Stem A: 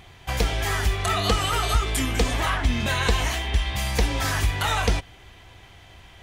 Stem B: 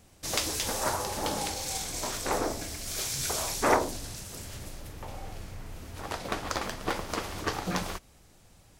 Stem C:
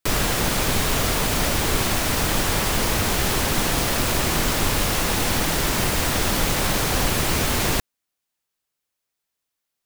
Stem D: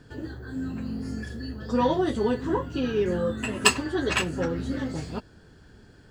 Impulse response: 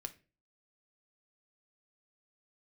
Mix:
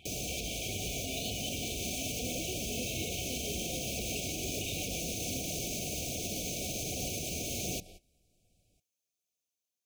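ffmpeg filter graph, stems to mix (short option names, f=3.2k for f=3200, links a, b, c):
-filter_complex "[0:a]equalizer=f=2.9k:t=o:w=1.4:g=8.5,volume=-8.5dB[a];[1:a]volume=-9.5dB[b];[2:a]equalizer=f=6.3k:w=7.2:g=11,dynaudnorm=f=520:g=5:m=9dB,volume=-9.5dB[c];[3:a]adelay=500,volume=-5dB[d];[b][d]amix=inputs=2:normalize=0,acompressor=threshold=-42dB:ratio=2.5,volume=0dB[e];[a][c]amix=inputs=2:normalize=0,highpass=68,alimiter=limit=-21.5dB:level=0:latency=1:release=132,volume=0dB[f];[e][f]amix=inputs=2:normalize=0,flanger=delay=0.1:depth=4.7:regen=-78:speed=1.3:shape=sinusoidal,afftfilt=real='re*(1-between(b*sr/4096,760,2200))':imag='im*(1-between(b*sr/4096,760,2200))':win_size=4096:overlap=0.75"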